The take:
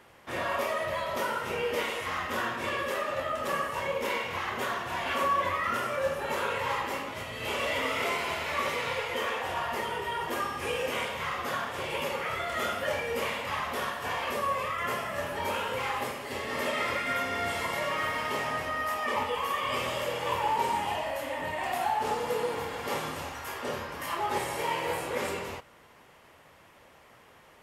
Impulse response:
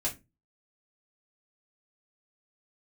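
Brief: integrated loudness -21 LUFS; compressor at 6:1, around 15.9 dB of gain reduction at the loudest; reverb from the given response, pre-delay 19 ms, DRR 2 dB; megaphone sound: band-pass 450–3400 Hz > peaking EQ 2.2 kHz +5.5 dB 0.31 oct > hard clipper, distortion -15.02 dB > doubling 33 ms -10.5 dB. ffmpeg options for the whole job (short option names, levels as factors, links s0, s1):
-filter_complex "[0:a]acompressor=threshold=0.00794:ratio=6,asplit=2[s0][s1];[1:a]atrim=start_sample=2205,adelay=19[s2];[s1][s2]afir=irnorm=-1:irlink=0,volume=0.473[s3];[s0][s3]amix=inputs=2:normalize=0,highpass=450,lowpass=3400,equalizer=f=2200:t=o:w=0.31:g=5.5,asoftclip=type=hard:threshold=0.0126,asplit=2[s4][s5];[s5]adelay=33,volume=0.299[s6];[s4][s6]amix=inputs=2:normalize=0,volume=11.2"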